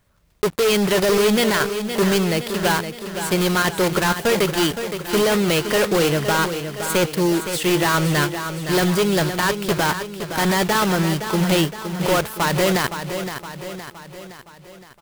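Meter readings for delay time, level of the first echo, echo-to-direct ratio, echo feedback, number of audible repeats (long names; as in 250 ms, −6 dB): 516 ms, −9.0 dB, −7.5 dB, 53%, 5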